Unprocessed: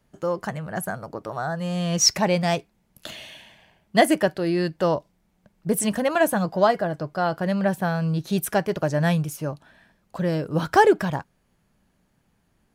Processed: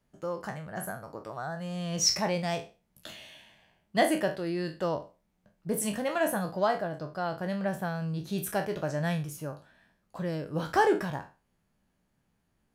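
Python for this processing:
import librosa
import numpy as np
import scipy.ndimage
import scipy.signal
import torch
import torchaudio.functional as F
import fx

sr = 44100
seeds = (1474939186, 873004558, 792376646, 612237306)

y = fx.spec_trails(x, sr, decay_s=0.32)
y = y * 10.0 ** (-9.0 / 20.0)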